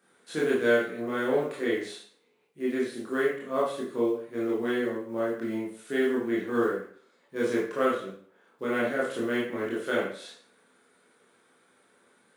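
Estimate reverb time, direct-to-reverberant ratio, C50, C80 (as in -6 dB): 0.50 s, -6.5 dB, 2.0 dB, 7.5 dB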